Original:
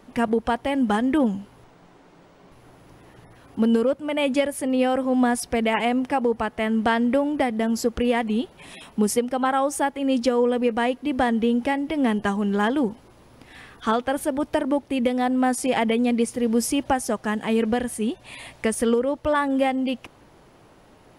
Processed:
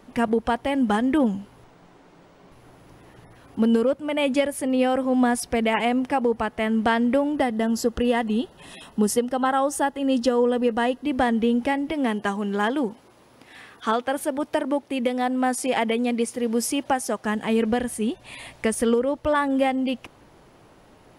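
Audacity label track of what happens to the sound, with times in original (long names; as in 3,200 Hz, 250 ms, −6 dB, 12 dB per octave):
7.360000	11.040000	Butterworth band-reject 2,300 Hz, Q 6.4
11.920000	17.250000	high-pass filter 250 Hz 6 dB per octave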